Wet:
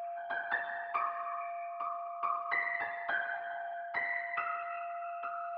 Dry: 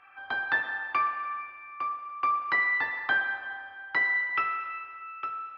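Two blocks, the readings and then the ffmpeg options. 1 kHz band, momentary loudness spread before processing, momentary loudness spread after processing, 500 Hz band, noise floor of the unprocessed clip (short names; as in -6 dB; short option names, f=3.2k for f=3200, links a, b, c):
-5.5 dB, 13 LU, 7 LU, +10.0 dB, -46 dBFS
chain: -filter_complex "[0:a]lowpass=4.3k,afftfilt=real='hypot(re,im)*cos(2*PI*random(0))':imag='hypot(re,im)*sin(2*PI*random(1))':win_size=512:overlap=0.75,aeval=exprs='val(0)+0.00891*sin(2*PI*690*n/s)':c=same,acrossover=split=470|3000[a][b][c];[a]acompressor=threshold=-44dB:ratio=3[d];[d][b][c]amix=inputs=3:normalize=0,equalizer=f=770:w=1:g=5.5,areverse,acompressor=mode=upward:threshold=-31dB:ratio=2.5,areverse,volume=-4.5dB"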